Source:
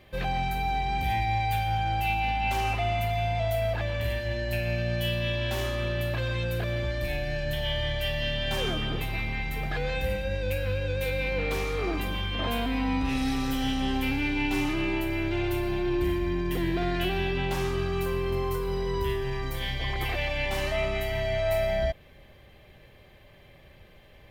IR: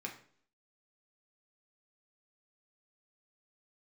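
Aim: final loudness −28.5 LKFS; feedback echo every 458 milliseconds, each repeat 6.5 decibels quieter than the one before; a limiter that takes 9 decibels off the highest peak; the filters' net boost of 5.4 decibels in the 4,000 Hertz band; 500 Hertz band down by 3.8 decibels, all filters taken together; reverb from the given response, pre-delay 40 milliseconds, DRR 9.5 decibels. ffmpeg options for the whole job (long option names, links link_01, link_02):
-filter_complex "[0:a]equalizer=frequency=500:width_type=o:gain=-5.5,equalizer=frequency=4000:width_type=o:gain=7.5,alimiter=limit=-24dB:level=0:latency=1,aecho=1:1:458|916|1374|1832|2290|2748:0.473|0.222|0.105|0.0491|0.0231|0.0109,asplit=2[link_01][link_02];[1:a]atrim=start_sample=2205,adelay=40[link_03];[link_02][link_03]afir=irnorm=-1:irlink=0,volume=-9.5dB[link_04];[link_01][link_04]amix=inputs=2:normalize=0,volume=2.5dB"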